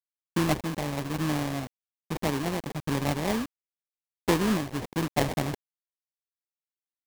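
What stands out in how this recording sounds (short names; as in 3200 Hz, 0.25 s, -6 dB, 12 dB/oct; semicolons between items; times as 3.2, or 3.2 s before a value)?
a quantiser's noise floor 6-bit, dither none; random-step tremolo; aliases and images of a low sample rate 1400 Hz, jitter 20%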